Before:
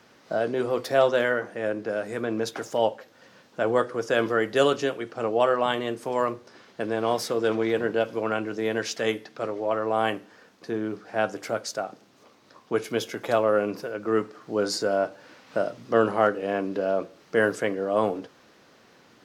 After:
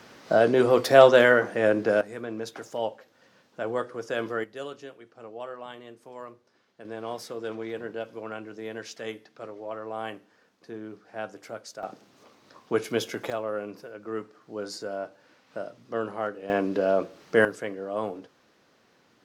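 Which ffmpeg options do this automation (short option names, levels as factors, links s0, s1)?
-af "asetnsamples=n=441:p=0,asendcmd='2.01 volume volume -6.5dB;4.44 volume volume -16.5dB;6.85 volume volume -10dB;11.83 volume volume 0dB;13.3 volume volume -9.5dB;16.5 volume volume 2dB;17.45 volume volume -7dB',volume=2"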